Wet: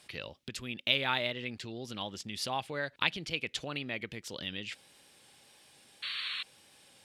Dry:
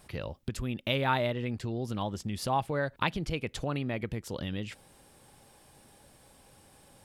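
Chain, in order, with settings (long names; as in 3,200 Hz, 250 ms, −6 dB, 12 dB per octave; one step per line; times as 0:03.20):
sound drawn into the spectrogram noise, 0:06.02–0:06.43, 1,000–4,500 Hz −41 dBFS
tape wow and flutter 29 cents
meter weighting curve D
level −6 dB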